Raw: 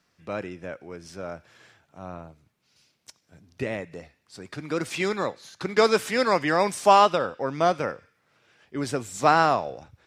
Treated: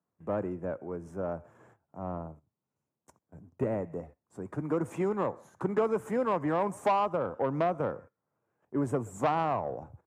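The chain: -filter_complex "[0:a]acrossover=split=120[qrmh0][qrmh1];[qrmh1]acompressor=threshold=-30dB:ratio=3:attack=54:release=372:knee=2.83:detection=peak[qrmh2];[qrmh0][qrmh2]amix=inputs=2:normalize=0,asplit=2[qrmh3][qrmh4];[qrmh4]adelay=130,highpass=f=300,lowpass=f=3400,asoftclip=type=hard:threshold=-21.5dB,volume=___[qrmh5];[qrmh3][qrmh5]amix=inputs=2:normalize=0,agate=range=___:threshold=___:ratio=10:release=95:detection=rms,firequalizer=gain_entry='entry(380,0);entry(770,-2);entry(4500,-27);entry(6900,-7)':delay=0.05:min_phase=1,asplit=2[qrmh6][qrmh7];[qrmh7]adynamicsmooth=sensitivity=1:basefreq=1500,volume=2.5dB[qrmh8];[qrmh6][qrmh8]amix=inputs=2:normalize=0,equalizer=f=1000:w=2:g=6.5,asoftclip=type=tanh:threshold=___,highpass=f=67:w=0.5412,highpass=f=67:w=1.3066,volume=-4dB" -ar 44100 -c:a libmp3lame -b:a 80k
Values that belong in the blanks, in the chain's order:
-24dB, -15dB, -55dB, -14.5dB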